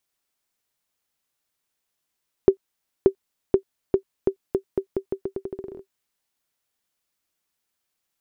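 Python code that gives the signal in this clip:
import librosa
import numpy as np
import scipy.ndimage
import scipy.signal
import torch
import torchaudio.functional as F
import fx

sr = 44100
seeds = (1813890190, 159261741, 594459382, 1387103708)

y = fx.bouncing_ball(sr, first_gap_s=0.58, ratio=0.83, hz=387.0, decay_ms=90.0, level_db=-3.0)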